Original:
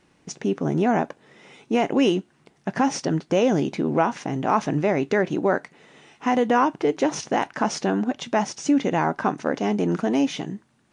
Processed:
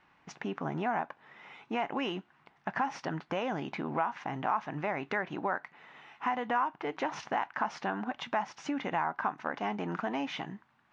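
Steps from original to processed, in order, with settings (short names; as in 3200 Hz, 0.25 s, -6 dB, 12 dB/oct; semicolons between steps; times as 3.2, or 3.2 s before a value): LPF 2500 Hz 12 dB/oct; resonant low shelf 650 Hz -10 dB, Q 1.5; compressor 2.5:1, threshold -31 dBFS, peak gain reduction 11.5 dB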